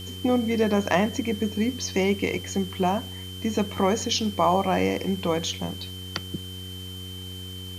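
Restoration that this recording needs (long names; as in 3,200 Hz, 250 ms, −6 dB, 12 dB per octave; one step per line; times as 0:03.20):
hum removal 92.8 Hz, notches 5
notch filter 3,100 Hz, Q 30
noise reduction from a noise print 30 dB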